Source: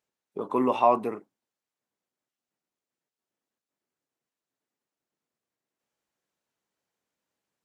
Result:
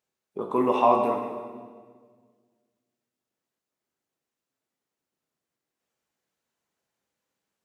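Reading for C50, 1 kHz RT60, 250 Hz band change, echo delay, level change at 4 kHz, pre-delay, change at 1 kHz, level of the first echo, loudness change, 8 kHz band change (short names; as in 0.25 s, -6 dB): 4.5 dB, 1.5 s, +1.5 dB, none, +2.0 dB, 6 ms, +2.0 dB, none, +1.0 dB, n/a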